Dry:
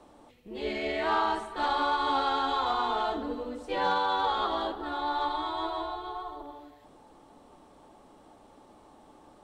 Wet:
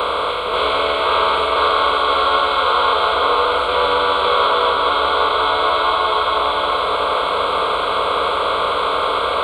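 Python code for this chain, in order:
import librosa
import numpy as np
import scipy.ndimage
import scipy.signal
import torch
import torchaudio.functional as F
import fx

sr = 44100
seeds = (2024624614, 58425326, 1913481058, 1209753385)

p1 = fx.bin_compress(x, sr, power=0.2)
p2 = scipy.signal.sosfilt(scipy.signal.butter(2, 58.0, 'highpass', fs=sr, output='sos'), p1)
p3 = fx.peak_eq(p2, sr, hz=340.0, db=-14.0, octaves=0.27)
p4 = fx.rider(p3, sr, range_db=10, speed_s=0.5)
p5 = p3 + F.gain(torch.from_numpy(p4), -1.0).numpy()
p6 = fx.fixed_phaser(p5, sr, hz=1200.0, stages=8)
p7 = p6 + fx.echo_single(p6, sr, ms=534, db=-3.5, dry=0)
y = F.gain(torch.from_numpy(p7), 3.0).numpy()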